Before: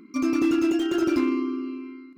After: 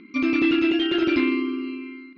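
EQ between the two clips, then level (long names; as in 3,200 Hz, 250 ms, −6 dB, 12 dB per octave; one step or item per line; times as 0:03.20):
Butterworth low-pass 4,100 Hz 36 dB per octave
high shelf with overshoot 1,600 Hz +7.5 dB, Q 1.5
+1.5 dB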